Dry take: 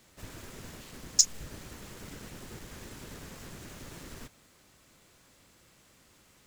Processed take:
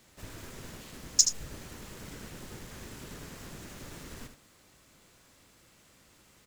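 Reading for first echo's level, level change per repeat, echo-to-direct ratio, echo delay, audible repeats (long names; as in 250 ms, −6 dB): −8.5 dB, repeats not evenly spaced, −8.5 dB, 76 ms, 1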